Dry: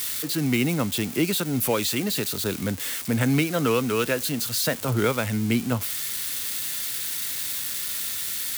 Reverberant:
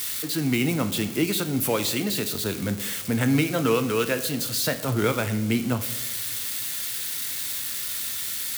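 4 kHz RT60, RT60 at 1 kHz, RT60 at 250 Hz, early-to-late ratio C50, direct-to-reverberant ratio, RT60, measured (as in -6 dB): 0.75 s, 0.85 s, 1.3 s, 12.5 dB, 8.5 dB, 1.1 s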